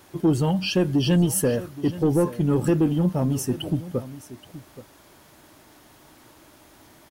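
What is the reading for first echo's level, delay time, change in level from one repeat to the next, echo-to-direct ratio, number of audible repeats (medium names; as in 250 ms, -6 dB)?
-16.0 dB, 825 ms, no regular repeats, -16.0 dB, 1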